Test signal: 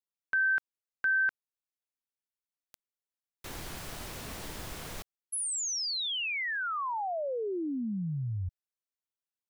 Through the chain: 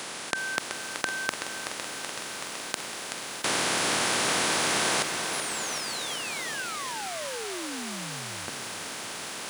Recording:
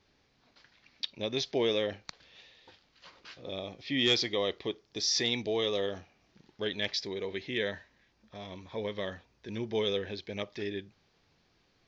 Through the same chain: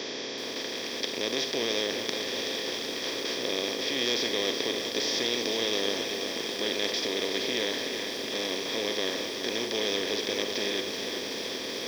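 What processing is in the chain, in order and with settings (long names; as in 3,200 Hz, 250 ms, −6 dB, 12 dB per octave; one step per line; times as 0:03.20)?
compressor on every frequency bin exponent 0.2
high-pass filter 180 Hz 12 dB per octave
feedback echo at a low word length 378 ms, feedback 80%, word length 6 bits, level −7.5 dB
level −7 dB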